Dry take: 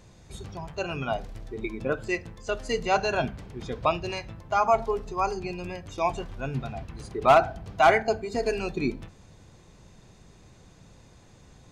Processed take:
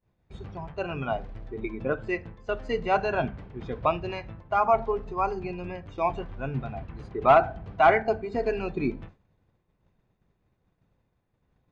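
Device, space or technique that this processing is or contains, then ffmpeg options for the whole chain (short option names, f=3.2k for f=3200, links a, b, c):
hearing-loss simulation: -af "lowpass=2.4k,agate=range=-33dB:threshold=-40dB:ratio=3:detection=peak"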